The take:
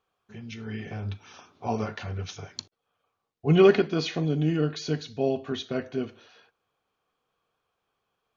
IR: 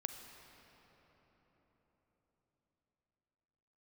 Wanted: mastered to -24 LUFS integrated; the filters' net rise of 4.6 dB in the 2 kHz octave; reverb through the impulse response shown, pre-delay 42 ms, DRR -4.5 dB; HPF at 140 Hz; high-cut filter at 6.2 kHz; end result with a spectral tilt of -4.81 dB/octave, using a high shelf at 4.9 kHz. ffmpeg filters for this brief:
-filter_complex "[0:a]highpass=140,lowpass=6200,equalizer=f=2000:t=o:g=5.5,highshelf=f=4900:g=4.5,asplit=2[s0][s1];[1:a]atrim=start_sample=2205,adelay=42[s2];[s1][s2]afir=irnorm=-1:irlink=0,volume=1.88[s3];[s0][s3]amix=inputs=2:normalize=0,volume=0.708"

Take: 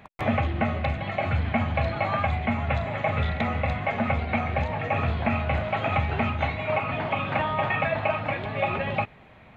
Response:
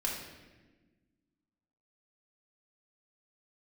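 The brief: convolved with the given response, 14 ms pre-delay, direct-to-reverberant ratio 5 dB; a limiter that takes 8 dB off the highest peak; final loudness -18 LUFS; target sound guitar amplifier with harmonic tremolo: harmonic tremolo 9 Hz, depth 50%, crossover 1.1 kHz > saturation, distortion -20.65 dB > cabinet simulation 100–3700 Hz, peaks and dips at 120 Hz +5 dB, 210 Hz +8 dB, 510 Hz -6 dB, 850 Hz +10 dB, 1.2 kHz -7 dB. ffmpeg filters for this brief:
-filter_complex "[0:a]alimiter=limit=0.106:level=0:latency=1,asplit=2[s0][s1];[1:a]atrim=start_sample=2205,adelay=14[s2];[s1][s2]afir=irnorm=-1:irlink=0,volume=0.335[s3];[s0][s3]amix=inputs=2:normalize=0,acrossover=split=1100[s4][s5];[s4]aeval=exprs='val(0)*(1-0.5/2+0.5/2*cos(2*PI*9*n/s))':c=same[s6];[s5]aeval=exprs='val(0)*(1-0.5/2-0.5/2*cos(2*PI*9*n/s))':c=same[s7];[s6][s7]amix=inputs=2:normalize=0,asoftclip=threshold=0.0891,highpass=100,equalizer=f=120:t=q:w=4:g=5,equalizer=f=210:t=q:w=4:g=8,equalizer=f=510:t=q:w=4:g=-6,equalizer=f=850:t=q:w=4:g=10,equalizer=f=1200:t=q:w=4:g=-7,lowpass=f=3700:w=0.5412,lowpass=f=3700:w=1.3066,volume=3.76"

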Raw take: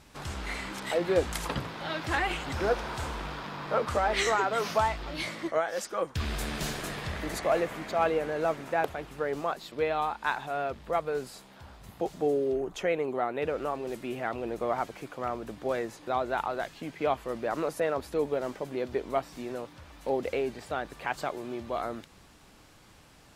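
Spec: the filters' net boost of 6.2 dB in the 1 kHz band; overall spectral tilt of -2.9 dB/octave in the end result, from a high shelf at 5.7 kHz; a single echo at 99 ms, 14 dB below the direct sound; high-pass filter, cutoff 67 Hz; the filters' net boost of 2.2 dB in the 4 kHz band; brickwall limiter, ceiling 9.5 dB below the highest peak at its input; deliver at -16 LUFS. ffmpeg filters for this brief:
-af "highpass=67,equalizer=f=1000:t=o:g=8.5,equalizer=f=4000:t=o:g=5,highshelf=f=5700:g=-8,alimiter=limit=0.126:level=0:latency=1,aecho=1:1:99:0.2,volume=5.31"

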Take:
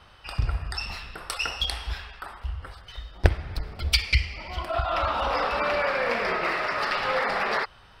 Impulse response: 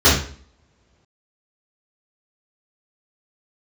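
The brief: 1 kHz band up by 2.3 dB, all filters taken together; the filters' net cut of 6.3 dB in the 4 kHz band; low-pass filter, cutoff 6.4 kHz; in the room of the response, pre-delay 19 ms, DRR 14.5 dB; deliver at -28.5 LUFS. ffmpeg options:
-filter_complex "[0:a]lowpass=6400,equalizer=f=1000:t=o:g=3.5,equalizer=f=4000:t=o:g=-8,asplit=2[s0][s1];[1:a]atrim=start_sample=2205,adelay=19[s2];[s1][s2]afir=irnorm=-1:irlink=0,volume=0.0112[s3];[s0][s3]amix=inputs=2:normalize=0,volume=0.794"

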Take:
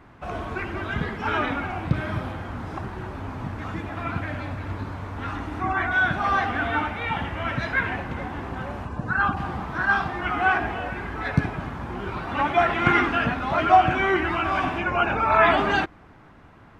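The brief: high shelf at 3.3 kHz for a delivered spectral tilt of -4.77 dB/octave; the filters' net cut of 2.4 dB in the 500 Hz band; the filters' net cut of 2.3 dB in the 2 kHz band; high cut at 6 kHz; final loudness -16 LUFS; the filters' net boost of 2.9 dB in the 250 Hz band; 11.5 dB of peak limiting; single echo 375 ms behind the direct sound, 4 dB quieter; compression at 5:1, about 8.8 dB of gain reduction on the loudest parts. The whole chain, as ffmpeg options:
-af "lowpass=6000,equalizer=f=250:t=o:g=5.5,equalizer=f=500:t=o:g=-5.5,equalizer=f=2000:t=o:g=-4,highshelf=f=3300:g=4,acompressor=threshold=0.0708:ratio=5,alimiter=limit=0.075:level=0:latency=1,aecho=1:1:375:0.631,volume=5.31"

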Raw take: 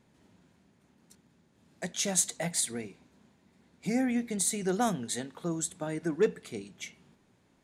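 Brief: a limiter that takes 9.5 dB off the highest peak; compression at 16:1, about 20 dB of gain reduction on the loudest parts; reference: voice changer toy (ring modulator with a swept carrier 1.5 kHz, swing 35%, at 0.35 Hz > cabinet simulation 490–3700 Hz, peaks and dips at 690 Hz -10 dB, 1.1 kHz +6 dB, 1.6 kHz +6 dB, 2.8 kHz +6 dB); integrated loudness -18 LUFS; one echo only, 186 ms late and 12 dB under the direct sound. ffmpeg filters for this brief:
-af "acompressor=threshold=0.00891:ratio=16,alimiter=level_in=5.31:limit=0.0631:level=0:latency=1,volume=0.188,aecho=1:1:186:0.251,aeval=exprs='val(0)*sin(2*PI*1500*n/s+1500*0.35/0.35*sin(2*PI*0.35*n/s))':c=same,highpass=490,equalizer=f=690:t=q:w=4:g=-10,equalizer=f=1100:t=q:w=4:g=6,equalizer=f=1600:t=q:w=4:g=6,equalizer=f=2800:t=q:w=4:g=6,lowpass=f=3700:w=0.5412,lowpass=f=3700:w=1.3066,volume=31.6"

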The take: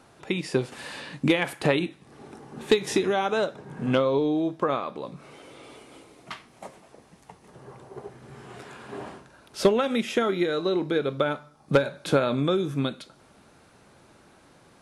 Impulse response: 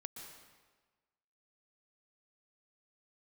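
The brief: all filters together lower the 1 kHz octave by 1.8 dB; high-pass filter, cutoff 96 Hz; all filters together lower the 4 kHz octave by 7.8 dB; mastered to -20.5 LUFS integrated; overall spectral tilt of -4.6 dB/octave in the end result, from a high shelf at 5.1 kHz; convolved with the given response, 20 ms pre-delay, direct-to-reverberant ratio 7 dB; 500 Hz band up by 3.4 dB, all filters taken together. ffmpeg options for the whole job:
-filter_complex "[0:a]highpass=96,equalizer=f=500:t=o:g=5,equalizer=f=1000:t=o:g=-3.5,equalizer=f=4000:t=o:g=-6,highshelf=f=5100:g=-8.5,asplit=2[s0][s1];[1:a]atrim=start_sample=2205,adelay=20[s2];[s1][s2]afir=irnorm=-1:irlink=0,volume=0.668[s3];[s0][s3]amix=inputs=2:normalize=0,volume=1.33"

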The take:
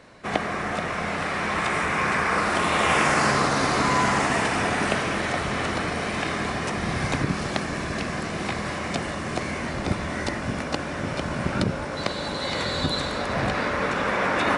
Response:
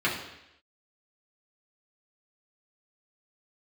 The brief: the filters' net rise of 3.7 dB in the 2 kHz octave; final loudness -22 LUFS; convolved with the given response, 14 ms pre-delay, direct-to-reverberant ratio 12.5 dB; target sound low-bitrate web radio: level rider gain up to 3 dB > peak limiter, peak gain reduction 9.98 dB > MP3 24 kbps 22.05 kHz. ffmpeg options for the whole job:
-filter_complex "[0:a]equalizer=f=2000:t=o:g=4.5,asplit=2[s0][s1];[1:a]atrim=start_sample=2205,adelay=14[s2];[s1][s2]afir=irnorm=-1:irlink=0,volume=0.0531[s3];[s0][s3]amix=inputs=2:normalize=0,dynaudnorm=m=1.41,alimiter=limit=0.2:level=0:latency=1,volume=1.41" -ar 22050 -c:a libmp3lame -b:a 24k

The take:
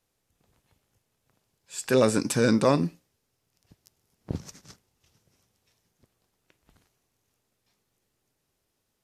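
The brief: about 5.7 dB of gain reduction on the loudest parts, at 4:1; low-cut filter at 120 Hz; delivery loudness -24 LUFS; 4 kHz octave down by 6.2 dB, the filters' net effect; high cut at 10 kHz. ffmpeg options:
-af "highpass=120,lowpass=10000,equalizer=f=4000:t=o:g=-8,acompressor=threshold=0.0708:ratio=4,volume=2.11"

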